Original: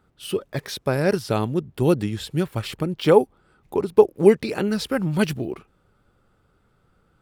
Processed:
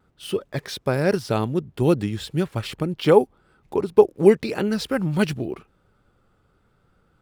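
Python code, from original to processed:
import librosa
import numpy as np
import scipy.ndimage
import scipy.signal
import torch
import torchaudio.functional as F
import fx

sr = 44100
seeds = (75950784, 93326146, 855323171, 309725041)

y = scipy.ndimage.median_filter(x, 3, mode='constant')
y = fx.vibrato(y, sr, rate_hz=0.91, depth_cents=23.0)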